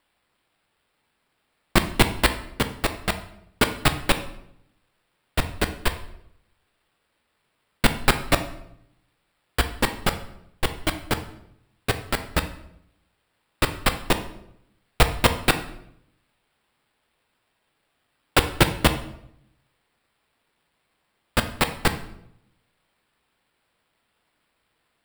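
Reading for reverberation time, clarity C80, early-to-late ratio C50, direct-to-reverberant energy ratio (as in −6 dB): 0.75 s, 15.0 dB, 11.5 dB, 8.0 dB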